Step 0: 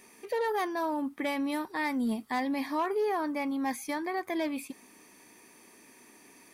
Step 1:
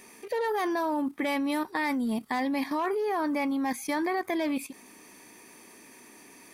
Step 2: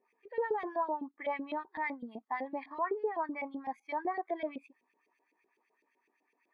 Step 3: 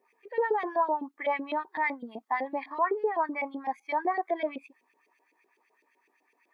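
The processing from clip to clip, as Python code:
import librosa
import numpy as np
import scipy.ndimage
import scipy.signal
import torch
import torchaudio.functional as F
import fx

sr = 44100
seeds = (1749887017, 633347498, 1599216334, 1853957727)

y1 = fx.level_steps(x, sr, step_db=12)
y1 = y1 * librosa.db_to_amplitude(8.0)
y2 = fx.filter_lfo_bandpass(y1, sr, shape='saw_up', hz=7.9, low_hz=430.0, high_hz=3300.0, q=1.6)
y2 = fx.spectral_expand(y2, sr, expansion=1.5)
y3 = fx.highpass(y2, sr, hz=360.0, slope=6)
y3 = y3 * librosa.db_to_amplitude(7.5)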